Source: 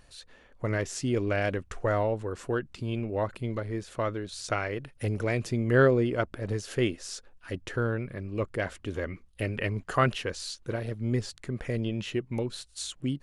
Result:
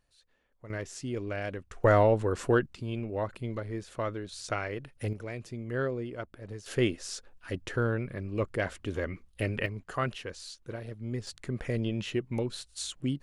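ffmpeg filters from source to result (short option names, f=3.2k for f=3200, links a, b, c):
-af "asetnsamples=n=441:p=0,asendcmd='0.7 volume volume -7dB;1.84 volume volume 5dB;2.66 volume volume -3dB;5.13 volume volume -10.5dB;6.66 volume volume 0dB;9.66 volume volume -7dB;11.27 volume volume -0.5dB',volume=-17dB"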